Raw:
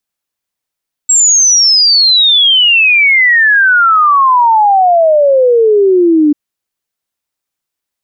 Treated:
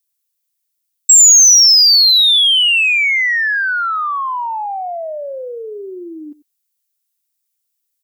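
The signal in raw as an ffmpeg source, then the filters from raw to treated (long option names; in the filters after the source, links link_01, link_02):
-f lavfi -i "aevalsrc='0.596*clip(min(t,5.24-t)/0.01,0,1)*sin(2*PI*7700*5.24/log(290/7700)*(exp(log(290/7700)*t/5.24)-1))':duration=5.24:sample_rate=44100"
-filter_complex "[0:a]aderivative,asplit=2[link_01][link_02];[link_02]asoftclip=type=tanh:threshold=-15.5dB,volume=-4dB[link_03];[link_01][link_03]amix=inputs=2:normalize=0,aecho=1:1:94:0.112"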